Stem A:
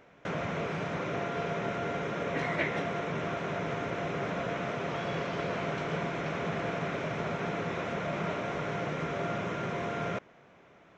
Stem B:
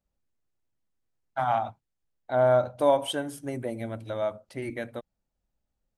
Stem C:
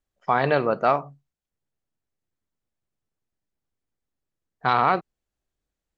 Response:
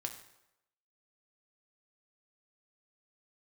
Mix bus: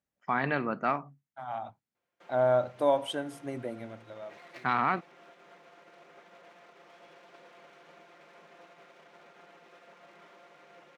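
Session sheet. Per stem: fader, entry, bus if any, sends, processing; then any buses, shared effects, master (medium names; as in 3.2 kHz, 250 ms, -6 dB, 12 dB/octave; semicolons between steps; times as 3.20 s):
-15.5 dB, 1.95 s, no send, comb filter that takes the minimum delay 5.7 ms; high-pass 340 Hz 12 dB/octave; upward expansion 1.5:1, over -49 dBFS
-3.5 dB, 0.00 s, no send, treble shelf 10 kHz -12 dB; auto duck -19 dB, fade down 1.00 s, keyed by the third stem
-7.5 dB, 0.00 s, no send, ten-band graphic EQ 250 Hz +7 dB, 500 Hz -8 dB, 2 kHz +6 dB, 4 kHz -6 dB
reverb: none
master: high-pass 120 Hz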